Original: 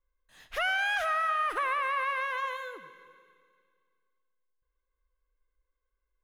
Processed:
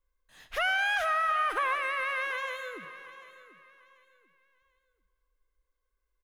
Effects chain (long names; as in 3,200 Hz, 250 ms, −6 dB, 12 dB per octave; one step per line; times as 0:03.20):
0:01.75–0:02.85: octave-band graphic EQ 125/250/1,000/2,000/8,000 Hz +11/+6/−8/+3/+4 dB
repeating echo 740 ms, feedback 28%, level −16 dB
level +1 dB